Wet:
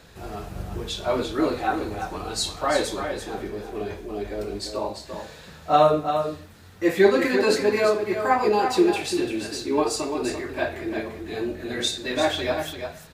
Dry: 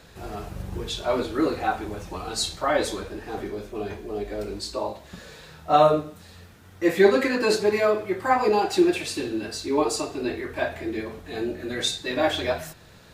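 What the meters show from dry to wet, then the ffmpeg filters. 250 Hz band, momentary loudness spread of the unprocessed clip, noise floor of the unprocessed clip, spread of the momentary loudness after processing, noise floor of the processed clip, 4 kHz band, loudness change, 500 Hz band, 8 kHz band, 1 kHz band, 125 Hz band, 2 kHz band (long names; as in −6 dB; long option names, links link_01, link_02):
+0.5 dB, 15 LU, −49 dBFS, 14 LU, −45 dBFS, +0.5 dB, +0.5 dB, +0.5 dB, +0.5 dB, +1.0 dB, +0.5 dB, +0.5 dB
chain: -af "aecho=1:1:343:0.422"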